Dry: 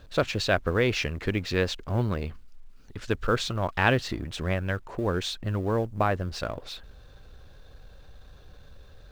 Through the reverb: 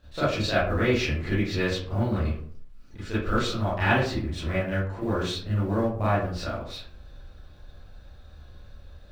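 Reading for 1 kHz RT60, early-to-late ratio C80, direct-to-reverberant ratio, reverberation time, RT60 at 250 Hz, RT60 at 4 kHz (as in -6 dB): 0.50 s, 6.5 dB, -11.5 dB, 0.55 s, 0.65 s, 0.30 s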